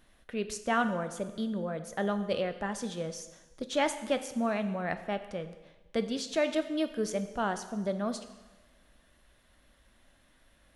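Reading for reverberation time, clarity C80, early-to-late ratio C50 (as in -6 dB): 1.2 s, 13.0 dB, 11.5 dB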